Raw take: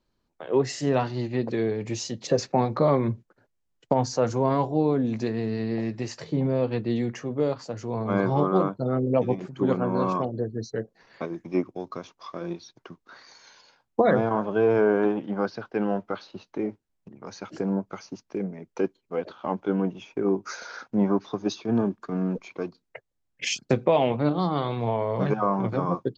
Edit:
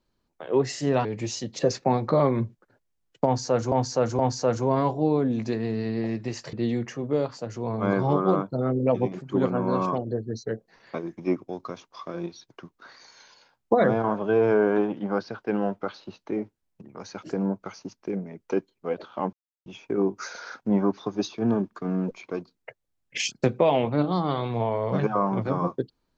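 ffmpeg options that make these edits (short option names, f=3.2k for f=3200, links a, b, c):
-filter_complex "[0:a]asplit=7[a][b][c][d][e][f][g];[a]atrim=end=1.052[h];[b]atrim=start=1.728:end=4.402[i];[c]atrim=start=3.928:end=4.402[j];[d]atrim=start=3.928:end=6.272[k];[e]atrim=start=6.798:end=19.6,asetpts=PTS-STARTPTS,afade=t=out:st=12.798:d=0.004:c=hsin[l];[f]atrim=start=19.6:end=19.93,asetpts=PTS-STARTPTS,volume=0[m];[g]atrim=start=19.93,asetpts=PTS-STARTPTS,afade=t=in:d=0.004:c=hsin[n];[h][i]acrossfade=d=0.004:c1=hsin:c2=hsin[o];[o][j]acrossfade=d=0.004:c1=hsin:c2=hsin[p];[p][k]acrossfade=d=0.004:c1=hsin:c2=hsin[q];[l][m][n]concat=n=3:v=0:a=1[r];[q][r]acrossfade=d=0.004:c1=hsin:c2=hsin"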